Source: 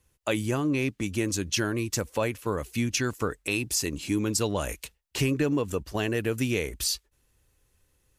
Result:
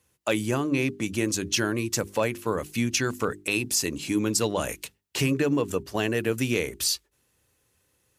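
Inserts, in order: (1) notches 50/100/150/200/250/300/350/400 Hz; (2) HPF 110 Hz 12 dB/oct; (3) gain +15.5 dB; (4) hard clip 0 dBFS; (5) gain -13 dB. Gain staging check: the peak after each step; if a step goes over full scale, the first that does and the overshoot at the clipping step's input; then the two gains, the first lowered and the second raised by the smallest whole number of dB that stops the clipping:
-12.0, -12.0, +3.5, 0.0, -13.0 dBFS; step 3, 3.5 dB; step 3 +11.5 dB, step 5 -9 dB

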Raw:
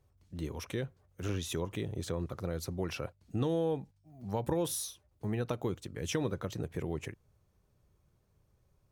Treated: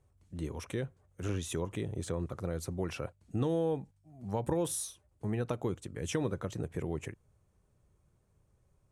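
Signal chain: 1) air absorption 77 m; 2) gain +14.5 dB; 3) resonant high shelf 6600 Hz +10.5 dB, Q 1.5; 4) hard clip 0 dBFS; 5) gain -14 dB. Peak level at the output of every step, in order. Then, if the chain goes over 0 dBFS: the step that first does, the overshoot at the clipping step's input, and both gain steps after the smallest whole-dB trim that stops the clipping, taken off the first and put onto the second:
-18.5, -4.0, -4.0, -4.0, -18.0 dBFS; no overload

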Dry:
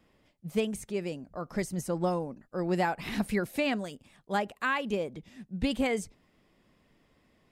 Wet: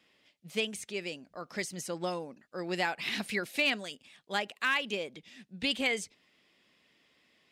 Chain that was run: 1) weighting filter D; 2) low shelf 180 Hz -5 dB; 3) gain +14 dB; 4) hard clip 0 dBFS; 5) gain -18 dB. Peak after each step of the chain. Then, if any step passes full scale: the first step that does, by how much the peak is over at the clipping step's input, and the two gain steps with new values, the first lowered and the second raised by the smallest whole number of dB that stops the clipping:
-10.5, -11.0, +3.0, 0.0, -18.0 dBFS; step 3, 3.0 dB; step 3 +11 dB, step 5 -15 dB

